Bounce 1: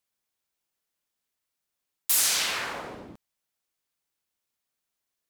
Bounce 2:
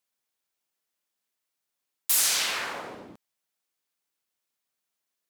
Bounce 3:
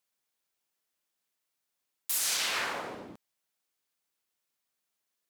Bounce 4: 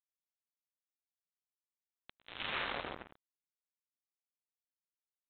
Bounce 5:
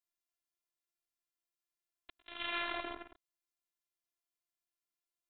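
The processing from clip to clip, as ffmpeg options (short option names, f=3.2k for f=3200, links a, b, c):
-af "highpass=f=180:p=1"
-af "alimiter=limit=-20dB:level=0:latency=1:release=91"
-af "acompressor=threshold=-38dB:ratio=3,aresample=8000,acrusher=bits=5:mix=0:aa=0.5,aresample=44100,volume=3dB"
-af "afftfilt=real='hypot(re,im)*cos(PI*b)':imag='0':win_size=512:overlap=0.75,volume=4dB"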